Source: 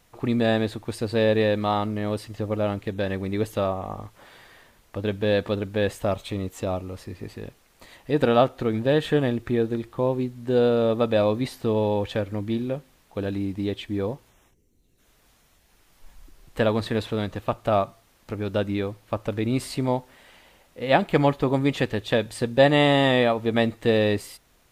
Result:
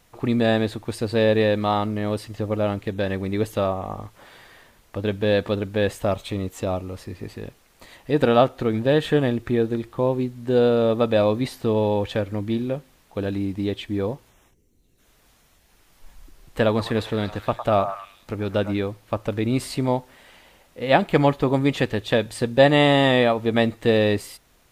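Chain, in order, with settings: 16.68–18.77 delay with a stepping band-pass 0.105 s, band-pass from 960 Hz, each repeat 0.7 oct, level -6 dB; gain +2 dB

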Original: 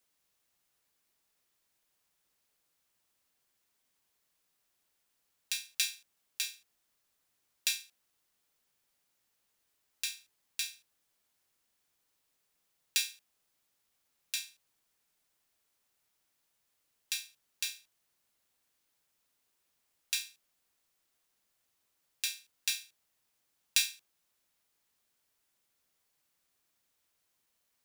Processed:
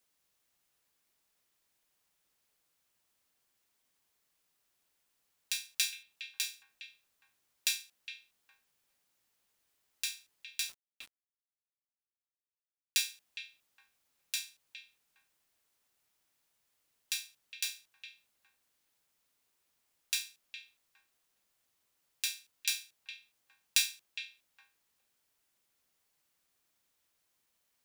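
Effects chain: delay with a stepping band-pass 0.411 s, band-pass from 2500 Hz, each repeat -1.4 oct, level -8.5 dB; 10.69–12.98 sample gate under -46.5 dBFS

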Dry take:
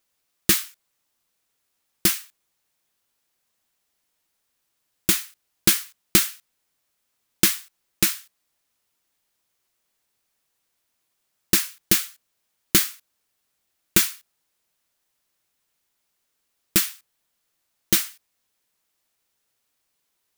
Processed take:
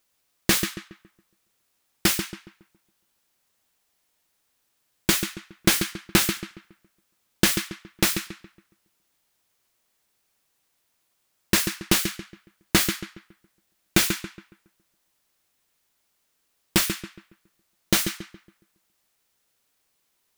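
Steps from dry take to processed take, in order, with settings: darkening echo 0.139 s, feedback 37%, low-pass 2700 Hz, level -7 dB; slew limiter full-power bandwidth 690 Hz; gain +2.5 dB

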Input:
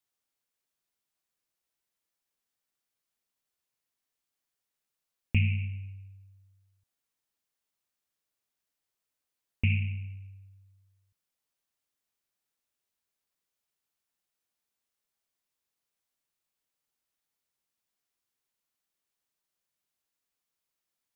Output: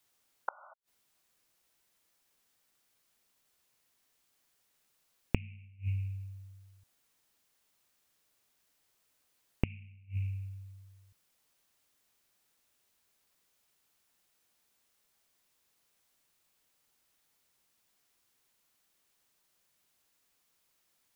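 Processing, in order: painted sound noise, 0.48–0.74, 540–1500 Hz -35 dBFS; flipped gate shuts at -32 dBFS, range -32 dB; gain +11.5 dB

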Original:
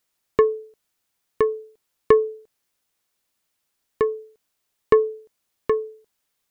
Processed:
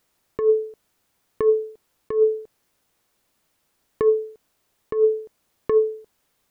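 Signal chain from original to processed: tilt shelf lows +4 dB, about 1400 Hz; negative-ratio compressor -21 dBFS, ratio -1; gain +3 dB

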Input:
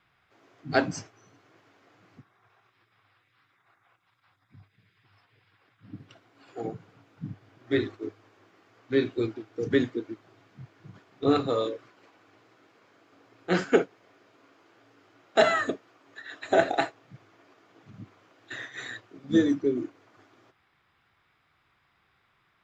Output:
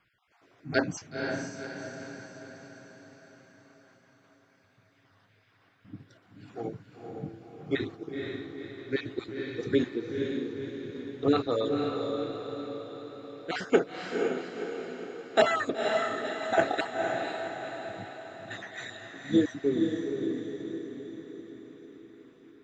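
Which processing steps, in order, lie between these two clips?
random spectral dropouts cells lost 23%; diffused feedback echo 0.504 s, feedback 54%, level -3.5 dB; gain -1.5 dB

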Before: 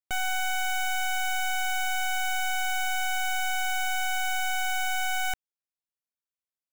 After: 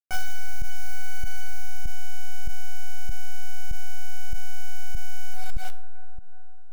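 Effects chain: tracing distortion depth 0.16 ms; 0.66–1.37 low shelf 160 Hz -2 dB; resonator 57 Hz, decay 1.2 s, harmonics all, mix 30%; shoebox room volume 470 m³, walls mixed, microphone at 1.4 m; bit-crush 6-bit; resonator 570 Hz, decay 0.39 s, mix 70%; analogue delay 0.372 s, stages 4096, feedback 57%, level -21 dB; pump 97 bpm, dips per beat 1, -12 dB, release 0.159 s; limiter -22.5 dBFS, peak gain reduction 12 dB; gain +10.5 dB

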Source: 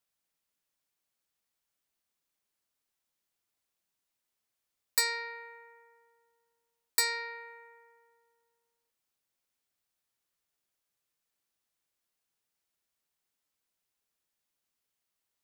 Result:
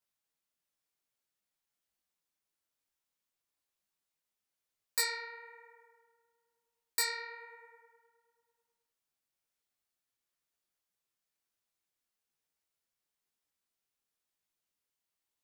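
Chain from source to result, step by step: detuned doubles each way 36 cents

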